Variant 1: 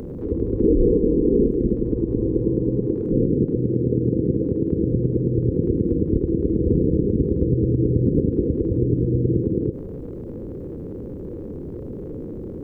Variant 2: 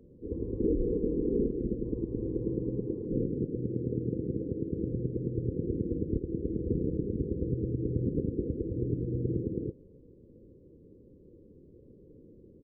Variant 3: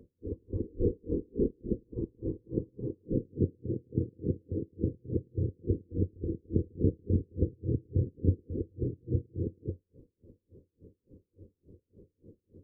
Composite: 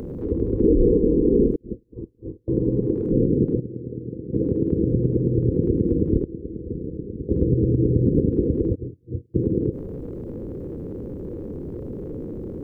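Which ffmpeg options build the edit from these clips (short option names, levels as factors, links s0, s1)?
-filter_complex "[2:a]asplit=2[s0][s1];[1:a]asplit=2[s2][s3];[0:a]asplit=5[s4][s5][s6][s7][s8];[s4]atrim=end=1.562[s9];[s0]atrim=start=1.558:end=2.482[s10];[s5]atrim=start=2.478:end=3.602[s11];[s2]atrim=start=3.598:end=4.332[s12];[s6]atrim=start=4.328:end=6.242[s13];[s3]atrim=start=6.238:end=7.292[s14];[s7]atrim=start=7.288:end=8.76[s15];[s1]atrim=start=8.74:end=9.36[s16];[s8]atrim=start=9.34[s17];[s9][s10]acrossfade=d=0.004:c1=hsin:c2=hsin[s18];[s18][s11]acrossfade=d=0.004:c1=hsin:c2=hsin[s19];[s19][s12]acrossfade=d=0.004:c1=hsin:c2=hsin[s20];[s20][s13]acrossfade=d=0.004:c1=hsin:c2=hsin[s21];[s21][s14]acrossfade=d=0.004:c1=hsin:c2=hsin[s22];[s22][s15]acrossfade=d=0.004:c1=hsin:c2=hsin[s23];[s23][s16]acrossfade=d=0.02:c1=tri:c2=tri[s24];[s24][s17]acrossfade=d=0.02:c1=tri:c2=tri"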